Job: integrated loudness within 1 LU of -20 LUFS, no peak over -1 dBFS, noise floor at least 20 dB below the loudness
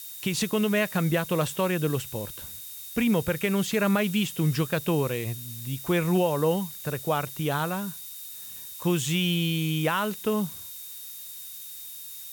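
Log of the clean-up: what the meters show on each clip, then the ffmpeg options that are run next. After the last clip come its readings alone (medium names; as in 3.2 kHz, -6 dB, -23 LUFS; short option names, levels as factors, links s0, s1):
steady tone 3.7 kHz; tone level -50 dBFS; noise floor -41 dBFS; noise floor target -48 dBFS; loudness -27.5 LUFS; peak level -13.5 dBFS; loudness target -20.0 LUFS
-> -af "bandreject=f=3700:w=30"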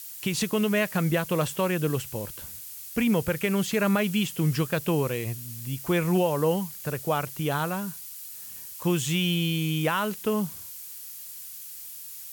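steady tone not found; noise floor -41 dBFS; noise floor target -47 dBFS
-> -af "afftdn=nr=6:nf=-41"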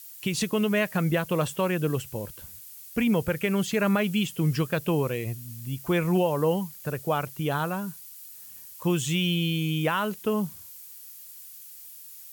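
noise floor -46 dBFS; noise floor target -47 dBFS
-> -af "afftdn=nr=6:nf=-46"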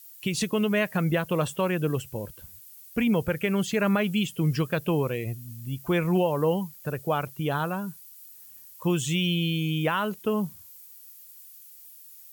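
noise floor -49 dBFS; loudness -27.0 LUFS; peak level -14.5 dBFS; loudness target -20.0 LUFS
-> -af "volume=2.24"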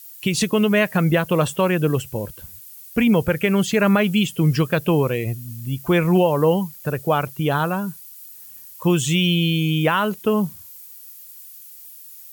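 loudness -20.0 LUFS; peak level -7.5 dBFS; noise floor -42 dBFS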